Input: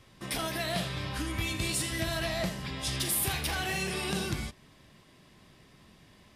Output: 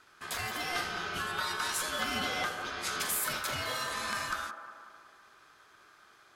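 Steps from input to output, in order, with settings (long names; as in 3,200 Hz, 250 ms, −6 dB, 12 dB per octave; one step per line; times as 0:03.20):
0:00.75–0:03.20: parametric band 1,600 Hz +6 dB 0.88 octaves
ring modulation 1,400 Hz
delay with a band-pass on its return 184 ms, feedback 55%, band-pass 660 Hz, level −7 dB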